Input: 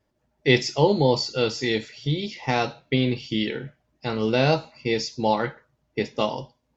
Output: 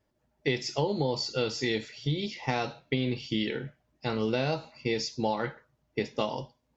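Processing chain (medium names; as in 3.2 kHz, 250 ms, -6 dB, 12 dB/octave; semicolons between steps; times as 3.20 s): compression 12:1, threshold -21 dBFS, peak gain reduction 10.5 dB; trim -2.5 dB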